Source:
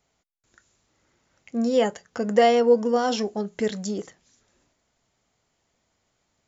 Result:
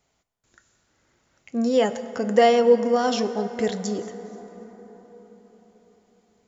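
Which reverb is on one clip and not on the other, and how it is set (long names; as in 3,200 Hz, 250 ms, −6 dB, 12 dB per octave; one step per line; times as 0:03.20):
dense smooth reverb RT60 5 s, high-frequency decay 0.4×, DRR 10.5 dB
level +1 dB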